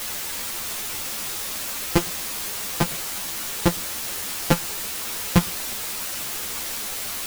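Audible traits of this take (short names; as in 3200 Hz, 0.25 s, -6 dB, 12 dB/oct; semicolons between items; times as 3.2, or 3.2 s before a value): a buzz of ramps at a fixed pitch in blocks of 256 samples; random-step tremolo; a quantiser's noise floor 6-bit, dither triangular; a shimmering, thickened sound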